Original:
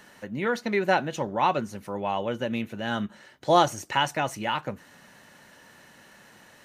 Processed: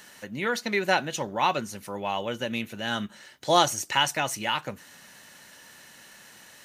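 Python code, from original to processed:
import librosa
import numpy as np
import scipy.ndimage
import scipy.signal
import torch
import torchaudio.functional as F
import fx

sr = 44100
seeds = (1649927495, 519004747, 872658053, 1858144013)

y = fx.high_shelf(x, sr, hz=2200.0, db=12.0)
y = F.gain(torch.from_numpy(y), -3.0).numpy()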